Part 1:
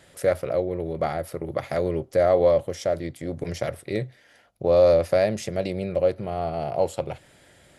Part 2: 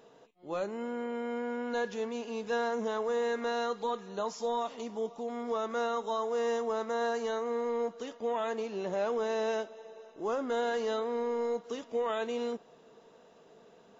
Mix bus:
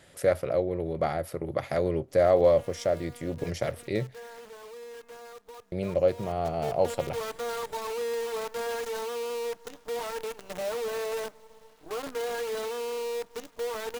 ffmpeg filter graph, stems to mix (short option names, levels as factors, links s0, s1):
-filter_complex "[0:a]volume=0.794,asplit=3[s0][s1][s2];[s0]atrim=end=4.49,asetpts=PTS-STARTPTS,afade=t=out:st=4.486:d=0.004:c=hsin[s3];[s1]atrim=start=4.49:end=5.72,asetpts=PTS-STARTPTS,volume=0[s4];[s2]atrim=start=5.72,asetpts=PTS-STARTPTS,afade=t=in:d=0.004:c=hsin[s5];[s3][s4][s5]concat=n=3:v=0:a=1[s6];[1:a]adynamicequalizer=threshold=0.00158:dfrequency=3300:dqfactor=1.3:tfrequency=3300:tqfactor=1.3:attack=5:release=100:ratio=0.375:range=3.5:mode=cutabove:tftype=bell,aecho=1:1:6.6:0.87,acrusher=bits=6:dc=4:mix=0:aa=0.000001,adelay=1650,volume=0.562,afade=t=in:st=6.17:d=0.73:silence=0.237137[s7];[s6][s7]amix=inputs=2:normalize=0"